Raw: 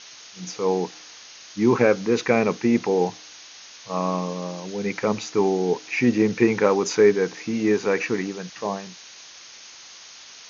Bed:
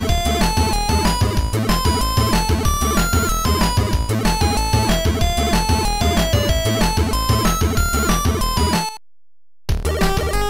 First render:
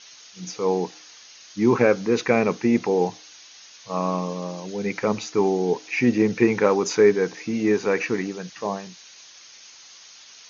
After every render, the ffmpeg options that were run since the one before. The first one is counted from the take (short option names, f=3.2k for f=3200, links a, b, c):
-af "afftdn=nr=6:nf=-45"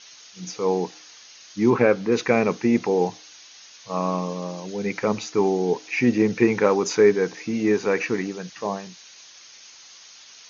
-filter_complex "[0:a]asettb=1/sr,asplit=3[a][b][c];[a]atrim=end=1.704[d];[b]atrim=start=1.7:end=2.12,asetpts=PTS-STARTPTS,afade=t=in:d=0.004:c=qsin,afade=t=out:st=0.416:d=0.004:c=qsin,acrossover=split=4700[e][f];[f]acompressor=threshold=-60dB:ratio=4:attack=1:release=60[g];[e][g]amix=inputs=2:normalize=0[h];[c]atrim=start=2.116[i];[d][h]acrossfade=d=0.004:c1=hsin:c2=qsin[j];[j][i]acrossfade=d=0.004:c1=qsin:c2=hsin"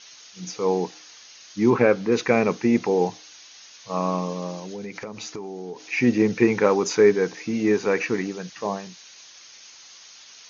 -filter_complex "[0:a]asettb=1/sr,asplit=3[a][b][c];[a]atrim=end=4.574[d];[b]atrim=start=4.57:end=5.9,asetpts=PTS-STARTPTS,afade=t=in:d=0.004:c=qsin,afade=t=out:st=1.326:d=0.004:c=qsin,acompressor=threshold=-30dB:ratio=10:attack=3.2:release=140:knee=1:detection=peak[e];[c]atrim=start=5.896[f];[d][e]acrossfade=d=0.004:c1=hsin:c2=qsin[g];[g][f]acrossfade=d=0.004:c1=qsin:c2=hsin"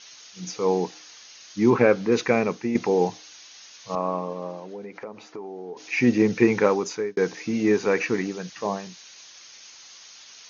-filter_complex "[0:a]asettb=1/sr,asplit=3[a][b][c];[a]atrim=end=3.954[d];[b]atrim=start=3.95:end=5.77,asetpts=PTS-STARTPTS,afade=t=in:d=0.004:c=qsin,afade=t=out:st=1.816:d=0.004:c=qsin,bandpass=f=650:t=q:w=0.63[e];[c]atrim=start=5.766[f];[d][e]acrossfade=d=0.004:c1=hsin:c2=qsin[g];[g][f]acrossfade=d=0.004:c1=qsin:c2=hsin,asplit=3[h][i][j];[h]atrim=end=2.75,asetpts=PTS-STARTPTS,afade=t=out:st=2.18:d=0.57:silence=0.398107[k];[i]atrim=start=2.75:end=7.17,asetpts=PTS-STARTPTS,afade=t=in:d=0.004:c=hsin:silence=0.398107,afade=t=out:st=3.86:d=0.56[l];[j]atrim=start=7.17,asetpts=PTS-STARTPTS,afade=t=in:d=0.004:c=hsin[m];[k][l][m]concat=n=3:v=0:a=1"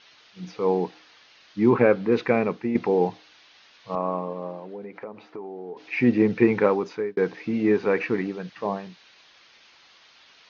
-af "lowpass=f=4.3k:w=0.5412,lowpass=f=4.3k:w=1.3066,highshelf=f=3.4k:g=-8"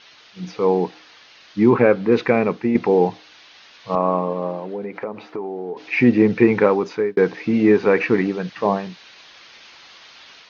-filter_complex "[0:a]asplit=2[a][b];[b]alimiter=limit=-14dB:level=0:latency=1:release=369,volume=0dB[c];[a][c]amix=inputs=2:normalize=0,dynaudnorm=f=740:g=3:m=4dB"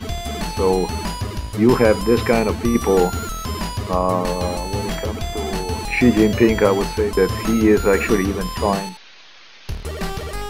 -filter_complex "[1:a]volume=-8.5dB[a];[0:a][a]amix=inputs=2:normalize=0"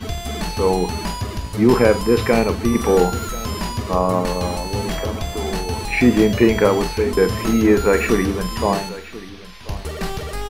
-filter_complex "[0:a]asplit=2[a][b];[b]adelay=44,volume=-11.5dB[c];[a][c]amix=inputs=2:normalize=0,aecho=1:1:1036:0.133"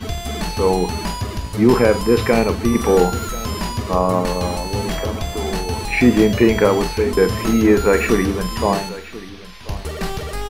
-af "volume=1dB,alimiter=limit=-2dB:level=0:latency=1"